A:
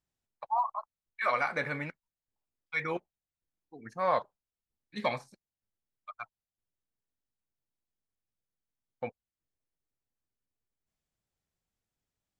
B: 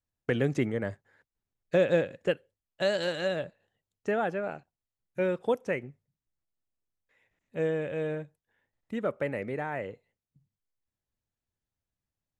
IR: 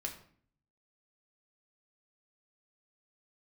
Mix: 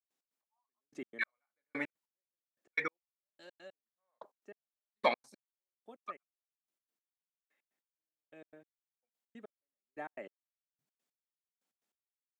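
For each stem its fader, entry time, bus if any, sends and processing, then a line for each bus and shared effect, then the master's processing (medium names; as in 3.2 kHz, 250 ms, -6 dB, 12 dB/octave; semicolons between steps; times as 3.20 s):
+1.5 dB, 0.00 s, no send, none
-7.0 dB, 0.40 s, no send, comb of notches 490 Hz; auto duck -14 dB, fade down 1.90 s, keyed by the first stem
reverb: none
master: high-pass 230 Hz 24 dB/octave; trance gate ".x.x...." 146 bpm -60 dB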